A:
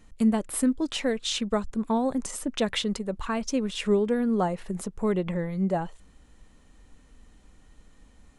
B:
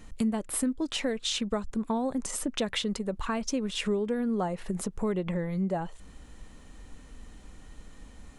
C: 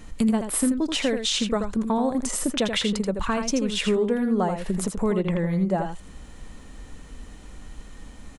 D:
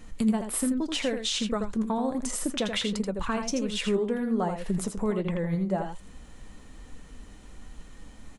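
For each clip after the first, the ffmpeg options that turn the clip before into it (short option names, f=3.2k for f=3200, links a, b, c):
-af "acompressor=threshold=-38dB:ratio=2.5,volume=6.5dB"
-af "aecho=1:1:82:0.447,volume=5.5dB"
-af "flanger=delay=3.9:depth=6.4:regen=71:speed=1.3:shape=sinusoidal"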